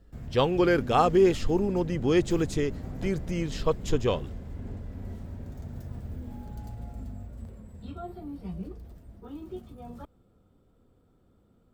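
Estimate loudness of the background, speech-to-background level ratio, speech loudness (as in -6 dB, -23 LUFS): -40.5 LUFS, 14.0 dB, -26.5 LUFS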